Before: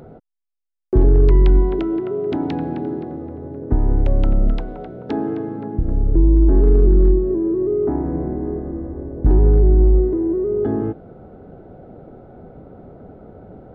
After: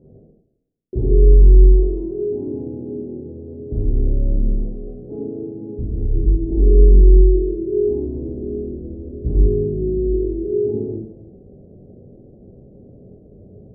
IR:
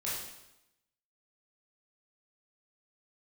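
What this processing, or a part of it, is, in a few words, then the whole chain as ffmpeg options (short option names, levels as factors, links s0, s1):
next room: -filter_complex "[0:a]lowpass=f=480:w=0.5412,lowpass=f=480:w=1.3066[s0];[1:a]atrim=start_sample=2205[s1];[s0][s1]afir=irnorm=-1:irlink=0,volume=0.531"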